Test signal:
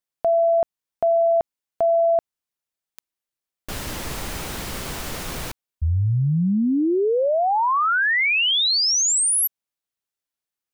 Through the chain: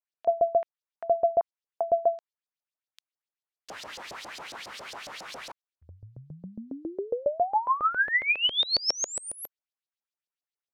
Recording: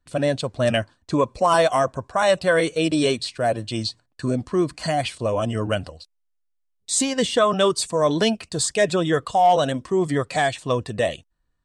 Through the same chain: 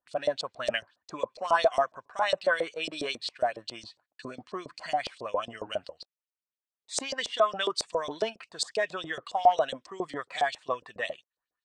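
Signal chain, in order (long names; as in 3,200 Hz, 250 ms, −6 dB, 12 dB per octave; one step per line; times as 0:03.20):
auto-filter band-pass saw up 7.3 Hz 530–5,600 Hz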